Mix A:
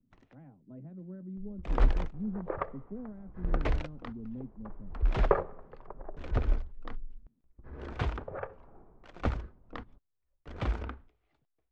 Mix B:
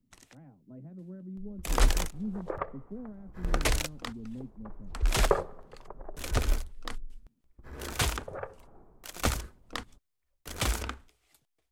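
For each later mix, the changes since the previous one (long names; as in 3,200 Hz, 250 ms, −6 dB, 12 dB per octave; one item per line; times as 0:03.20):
first sound: remove head-to-tape spacing loss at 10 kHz 44 dB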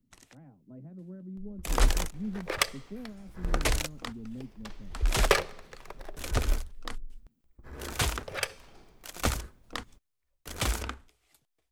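second sound: remove low-pass filter 1,200 Hz 24 dB per octave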